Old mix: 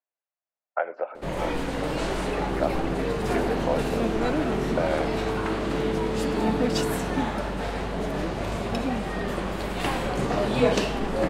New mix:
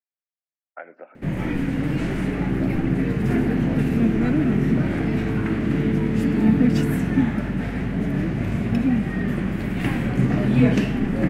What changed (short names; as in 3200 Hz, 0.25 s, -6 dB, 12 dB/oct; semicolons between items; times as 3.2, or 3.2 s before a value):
speech -7.0 dB; master: add graphic EQ 125/250/500/1000/2000/4000/8000 Hz +11/+9/-6/-8/+7/-9/-6 dB